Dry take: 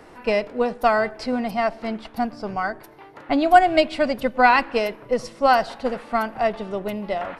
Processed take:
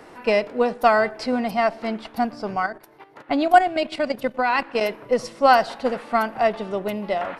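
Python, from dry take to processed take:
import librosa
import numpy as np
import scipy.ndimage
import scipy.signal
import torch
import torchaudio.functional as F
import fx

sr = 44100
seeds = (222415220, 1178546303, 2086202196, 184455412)

y = fx.low_shelf(x, sr, hz=85.0, db=-11.0)
y = fx.level_steps(y, sr, step_db=11, at=(2.66, 4.81))
y = F.gain(torch.from_numpy(y), 2.0).numpy()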